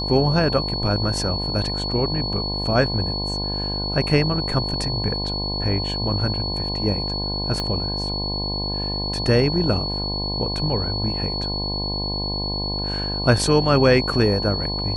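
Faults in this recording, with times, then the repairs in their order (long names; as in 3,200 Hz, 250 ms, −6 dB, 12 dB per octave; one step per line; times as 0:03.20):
mains buzz 50 Hz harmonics 21 −28 dBFS
whistle 4,400 Hz −26 dBFS
0:07.60: click −12 dBFS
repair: click removal
hum removal 50 Hz, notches 21
notch filter 4,400 Hz, Q 30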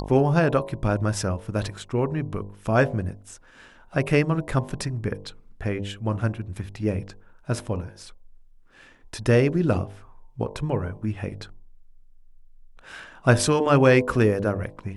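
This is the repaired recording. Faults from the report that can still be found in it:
0:07.60: click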